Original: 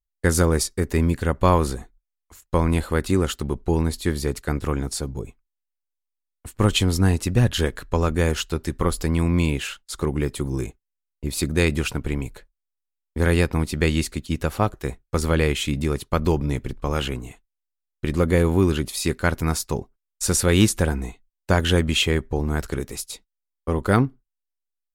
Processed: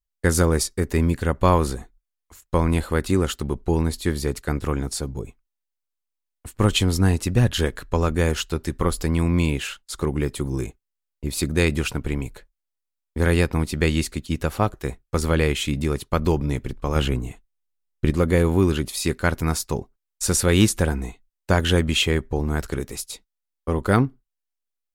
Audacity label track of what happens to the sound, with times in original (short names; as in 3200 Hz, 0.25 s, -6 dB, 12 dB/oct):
16.950000	18.110000	low shelf 380 Hz +7 dB